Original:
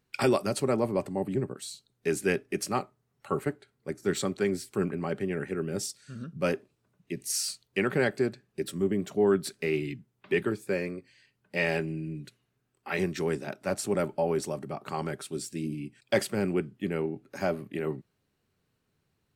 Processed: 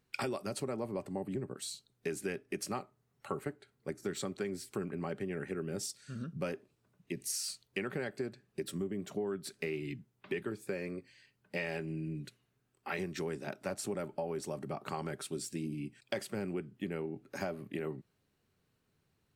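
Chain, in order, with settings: compressor 6:1, threshold -33 dBFS, peak gain reduction 13 dB; gain -1 dB

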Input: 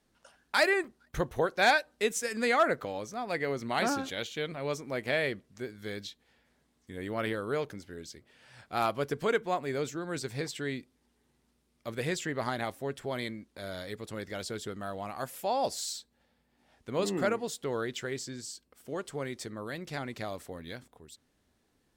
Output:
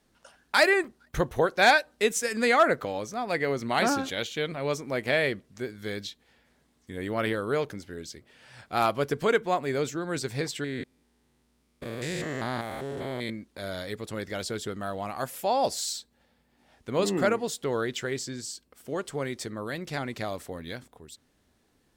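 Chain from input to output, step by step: 10.64–13.3 stepped spectrum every 0.2 s; gain +4.5 dB

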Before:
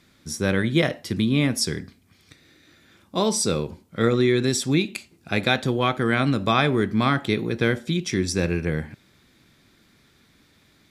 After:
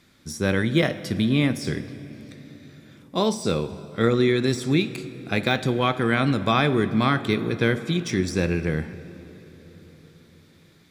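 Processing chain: de-esser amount 60%; on a send: reverb RT60 4.4 s, pre-delay 50 ms, DRR 14.5 dB

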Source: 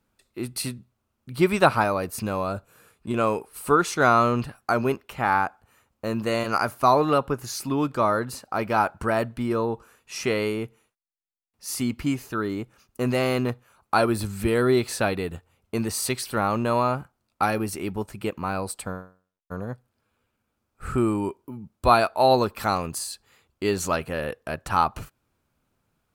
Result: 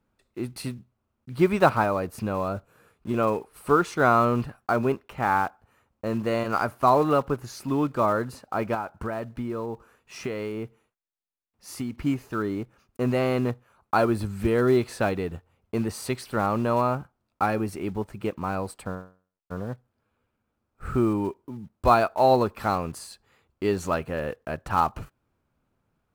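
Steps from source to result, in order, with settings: block floating point 5-bit; high shelf 2900 Hz -11.5 dB; 8.74–11.95 compressor 6:1, threshold -28 dBFS, peak gain reduction 10.5 dB

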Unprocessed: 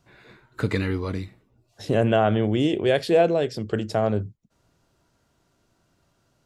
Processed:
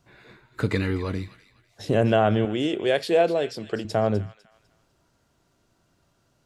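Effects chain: 2.45–3.85 HPF 330 Hz 6 dB/oct; on a send: thin delay 0.25 s, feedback 31%, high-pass 1700 Hz, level -12.5 dB

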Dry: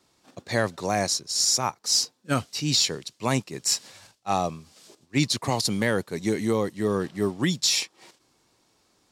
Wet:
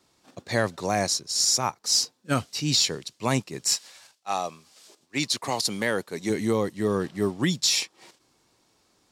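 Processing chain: 3.75–6.29 HPF 1100 Hz -> 250 Hz 6 dB/oct

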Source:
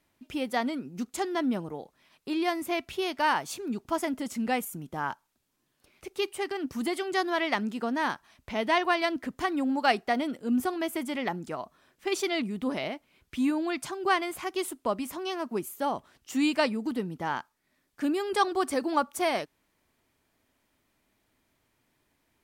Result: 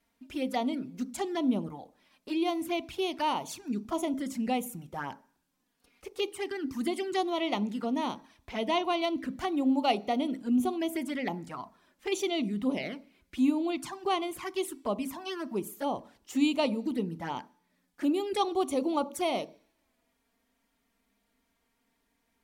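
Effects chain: envelope flanger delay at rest 4.4 ms, full sweep at -26 dBFS; on a send: reverb RT60 0.50 s, pre-delay 3 ms, DRR 15 dB

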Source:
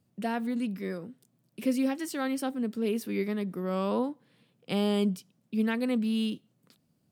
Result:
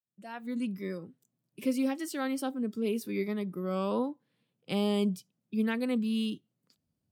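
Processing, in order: opening faded in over 0.59 s; spectral noise reduction 10 dB; gain -1.5 dB

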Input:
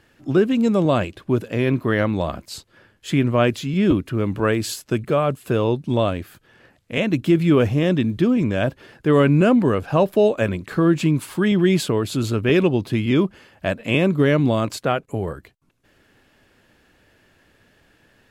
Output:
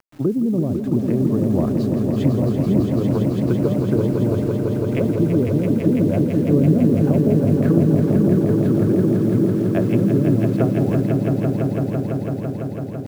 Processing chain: treble ducked by the level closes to 330 Hz, closed at -15 dBFS; LPF 1600 Hz 6 dB/oct; requantised 8-bit, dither none; tempo 1.4×; swelling echo 0.167 s, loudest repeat 5, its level -6.5 dB

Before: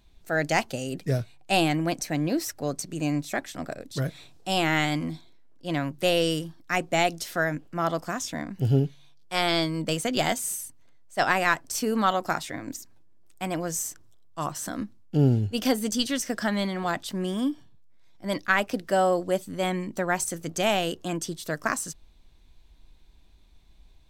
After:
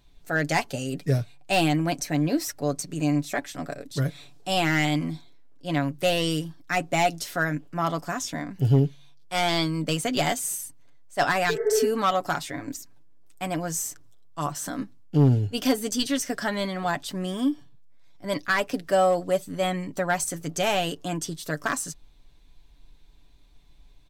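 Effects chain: overloaded stage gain 15.5 dB; spectral repair 11.52–11.84, 350–2200 Hz after; comb 7 ms, depth 50%

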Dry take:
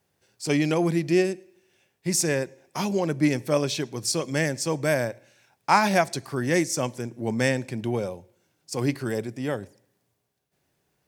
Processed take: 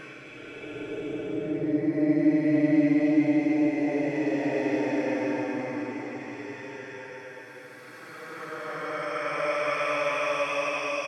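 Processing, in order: early reflections 69 ms -12.5 dB, 79 ms -11 dB; LFO band-pass saw up 2.2 Hz 450–2900 Hz; Paulstretch 25×, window 0.10 s, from 3.14; gain +8.5 dB

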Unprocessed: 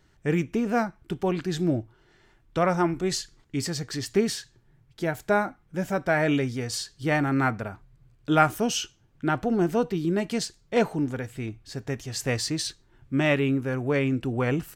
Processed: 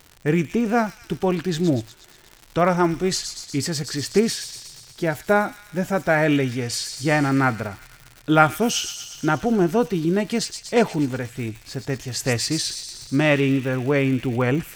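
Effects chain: thin delay 0.12 s, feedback 65%, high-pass 3600 Hz, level -5.5 dB; crackle 170/s -36 dBFS; gain +4.5 dB

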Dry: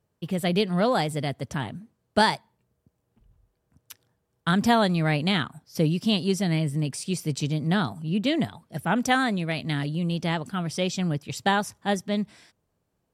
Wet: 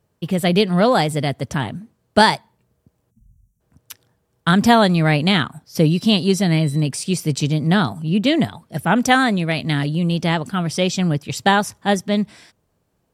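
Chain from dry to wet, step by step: 3.1–3.61 spectral gain 250–5600 Hz -25 dB; 5.84–6.83 whine 4000 Hz -50 dBFS; gain +7.5 dB

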